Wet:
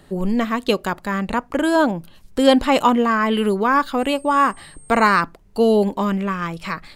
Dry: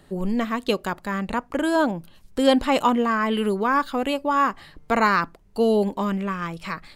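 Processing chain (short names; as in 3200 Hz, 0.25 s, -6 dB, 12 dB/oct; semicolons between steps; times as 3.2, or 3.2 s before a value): 3.98–5.2 whine 8500 Hz -50 dBFS; gain +4 dB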